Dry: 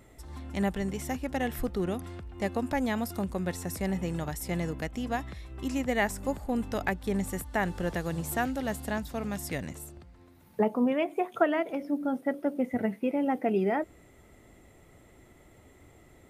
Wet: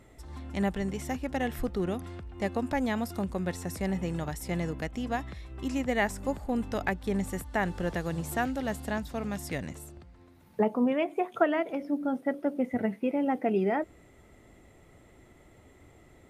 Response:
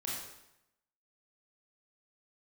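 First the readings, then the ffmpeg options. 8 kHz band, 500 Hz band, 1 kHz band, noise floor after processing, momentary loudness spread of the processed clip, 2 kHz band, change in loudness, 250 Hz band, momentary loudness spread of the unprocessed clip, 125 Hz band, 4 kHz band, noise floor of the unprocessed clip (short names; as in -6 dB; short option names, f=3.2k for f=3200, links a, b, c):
-3.0 dB, 0.0 dB, 0.0 dB, -57 dBFS, 8 LU, 0.0 dB, 0.0 dB, 0.0 dB, 8 LU, 0.0 dB, -0.5 dB, -57 dBFS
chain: -af "highshelf=f=11k:g=-9"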